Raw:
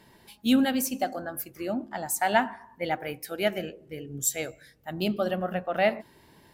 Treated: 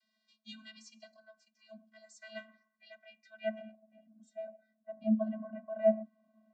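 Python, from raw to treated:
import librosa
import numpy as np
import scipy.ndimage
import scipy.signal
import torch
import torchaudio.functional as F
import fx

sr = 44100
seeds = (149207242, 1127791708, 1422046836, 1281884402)

y = fx.vocoder(x, sr, bands=32, carrier='square', carrier_hz=218.0)
y = fx.filter_sweep_bandpass(y, sr, from_hz=4600.0, to_hz=530.0, start_s=2.98, end_s=3.97, q=1.3)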